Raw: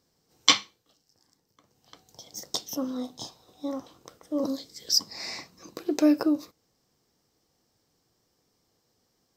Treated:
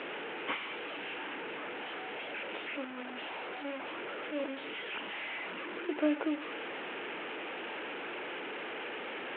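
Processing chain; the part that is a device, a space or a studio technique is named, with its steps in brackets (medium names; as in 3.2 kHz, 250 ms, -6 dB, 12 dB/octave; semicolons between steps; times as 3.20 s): digital answering machine (band-pass 300–3200 Hz; one-bit delta coder 16 kbps, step -29.5 dBFS; cabinet simulation 440–3300 Hz, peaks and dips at 510 Hz -4 dB, 720 Hz -7 dB, 1.1 kHz -8 dB, 1.9 kHz -3 dB); bass shelf 110 Hz +7 dB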